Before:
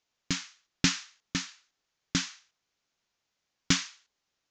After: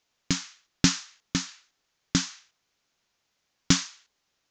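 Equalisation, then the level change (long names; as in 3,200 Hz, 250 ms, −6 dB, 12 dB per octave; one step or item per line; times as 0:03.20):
dynamic equaliser 2,300 Hz, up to −7 dB, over −43 dBFS, Q 0.85
+5.5 dB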